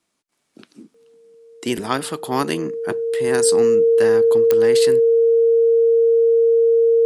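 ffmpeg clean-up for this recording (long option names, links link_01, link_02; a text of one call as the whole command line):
ffmpeg -i in.wav -af "adeclick=threshold=4,bandreject=frequency=460:width=30" out.wav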